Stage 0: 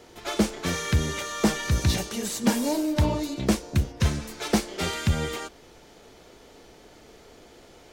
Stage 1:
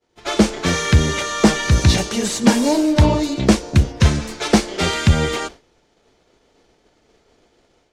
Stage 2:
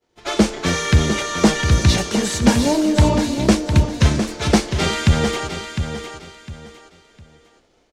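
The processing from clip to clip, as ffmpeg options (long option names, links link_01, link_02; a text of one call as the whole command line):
ffmpeg -i in.wav -af "agate=range=-33dB:threshold=-38dB:ratio=3:detection=peak,lowpass=8200,dynaudnorm=framelen=160:gausssize=3:maxgain=9dB,volume=1.5dB" out.wav
ffmpeg -i in.wav -af "aecho=1:1:706|1412|2118:0.376|0.105|0.0295,volume=-1dB" out.wav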